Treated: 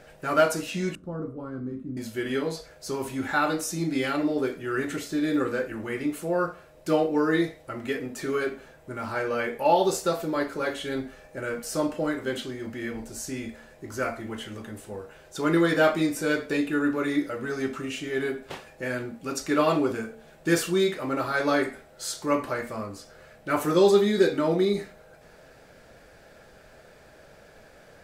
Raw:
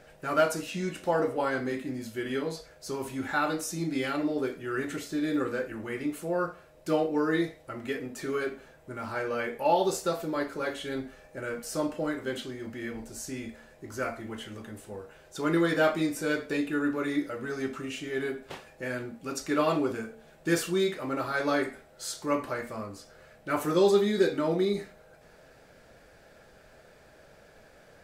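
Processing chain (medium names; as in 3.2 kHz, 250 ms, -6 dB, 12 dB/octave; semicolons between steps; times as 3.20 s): 0.95–1.97 s: FFT filter 210 Hz 0 dB, 850 Hz -22 dB, 1.2 kHz -11 dB, 1.9 kHz -29 dB; trim +3.5 dB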